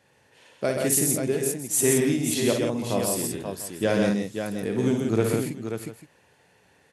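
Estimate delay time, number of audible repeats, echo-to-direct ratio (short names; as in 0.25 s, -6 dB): 55 ms, 5, 0.5 dB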